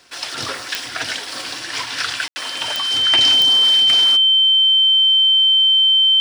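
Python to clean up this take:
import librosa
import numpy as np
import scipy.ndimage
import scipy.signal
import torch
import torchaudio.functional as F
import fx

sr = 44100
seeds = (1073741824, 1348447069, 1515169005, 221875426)

y = fx.fix_declick_ar(x, sr, threshold=10.0)
y = fx.notch(y, sr, hz=3100.0, q=30.0)
y = fx.fix_ambience(y, sr, seeds[0], print_start_s=0.0, print_end_s=0.5, start_s=2.28, end_s=2.36)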